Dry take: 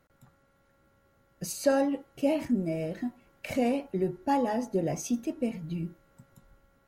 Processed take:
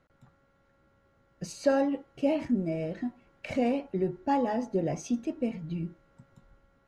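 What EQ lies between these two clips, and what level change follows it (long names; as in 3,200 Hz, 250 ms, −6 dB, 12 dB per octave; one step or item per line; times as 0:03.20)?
high-frequency loss of the air 86 metres
0.0 dB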